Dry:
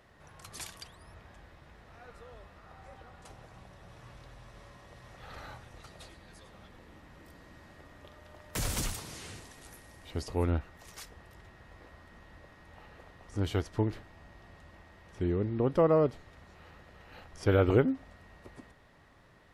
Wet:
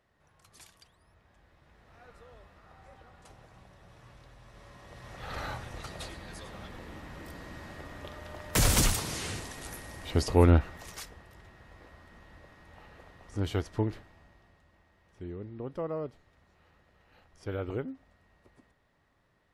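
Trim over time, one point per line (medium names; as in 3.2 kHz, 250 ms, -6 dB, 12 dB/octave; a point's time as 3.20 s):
1.18 s -11.5 dB
2.00 s -3 dB
4.39 s -3 dB
5.41 s +9 dB
10.67 s +9 dB
11.25 s 0 dB
13.86 s 0 dB
14.64 s -10.5 dB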